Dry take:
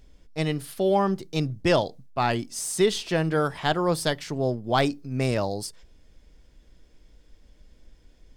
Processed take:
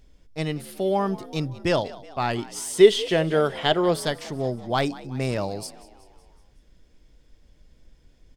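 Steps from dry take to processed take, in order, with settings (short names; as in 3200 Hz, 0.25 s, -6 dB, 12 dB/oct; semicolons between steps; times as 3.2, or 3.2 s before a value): 2.38–4 thirty-one-band EQ 400 Hz +11 dB, 630 Hz +7 dB, 2000 Hz +6 dB, 3150 Hz +10 dB; frequency-shifting echo 0.186 s, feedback 55%, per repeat +64 Hz, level -19 dB; gain -1.5 dB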